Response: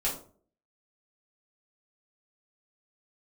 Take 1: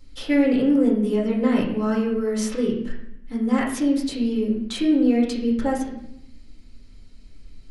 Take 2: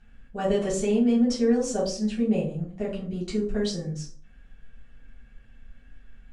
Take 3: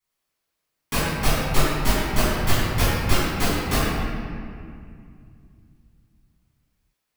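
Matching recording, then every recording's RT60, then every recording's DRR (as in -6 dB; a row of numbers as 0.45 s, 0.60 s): 2; 0.75 s, no single decay rate, 2.3 s; -3.5 dB, -7.5 dB, -13.5 dB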